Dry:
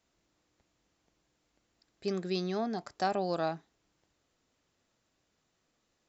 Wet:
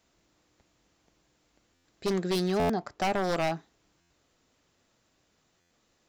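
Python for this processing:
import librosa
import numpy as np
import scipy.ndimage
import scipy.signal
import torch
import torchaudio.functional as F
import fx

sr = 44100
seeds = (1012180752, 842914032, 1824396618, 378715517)

y = fx.high_shelf(x, sr, hz=3700.0, db=-11.0, at=(2.71, 3.24))
y = 10.0 ** (-28.0 / 20.0) * (np.abs((y / 10.0 ** (-28.0 / 20.0) + 3.0) % 4.0 - 2.0) - 1.0)
y = fx.buffer_glitch(y, sr, at_s=(1.74, 2.59, 4.0, 5.6), block=512, repeats=8)
y = F.gain(torch.from_numpy(y), 6.5).numpy()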